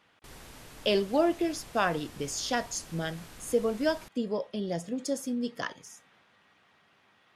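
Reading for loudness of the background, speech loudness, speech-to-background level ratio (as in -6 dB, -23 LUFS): -49.0 LUFS, -31.0 LUFS, 18.0 dB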